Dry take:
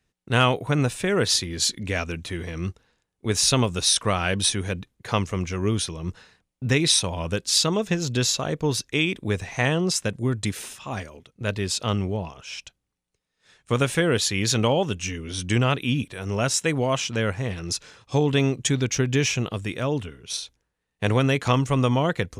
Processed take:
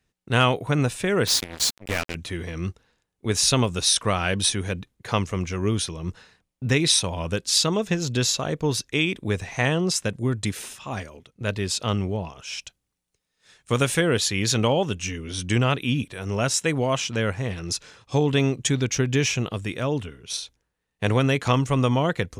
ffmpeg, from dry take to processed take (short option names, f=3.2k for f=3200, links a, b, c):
-filter_complex "[0:a]asettb=1/sr,asplit=3[a][b][c];[a]atrim=end=1.274[d];[b]atrim=start=1.27:end=2.15,asetpts=PTS-STARTPTS,afade=t=in:d=0.004:c=qsin,afade=t=out:st=0.876:d=0.004:c=qsin,acrusher=bits=3:mix=0:aa=0.5[e];[c]atrim=start=2.146[f];[d][e]acrossfade=d=0.004:c1=hsin:c2=qsin[g];[g][f]acrossfade=d=0.004:c1=qsin:c2=hsin,asettb=1/sr,asplit=3[h][i][j];[h]atrim=end=12.374[k];[i]atrim=start=12.37:end=14.01,asetpts=PTS-STARTPTS,afade=t=in:d=0.004:c=qsin,afade=t=out:st=1.636:d=0.004:c=qsin,highshelf=f=4.3k:g=6[l];[j]atrim=start=14.006[m];[k][l]acrossfade=d=0.004:c1=hsin:c2=qsin[n];[n][m]acrossfade=d=0.004:c1=qsin:c2=hsin"